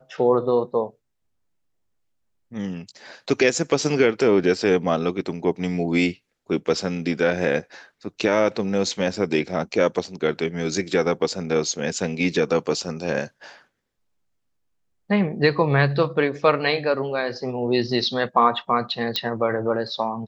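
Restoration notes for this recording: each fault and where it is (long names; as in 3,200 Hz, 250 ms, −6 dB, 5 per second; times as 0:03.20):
0:19.16: click −8 dBFS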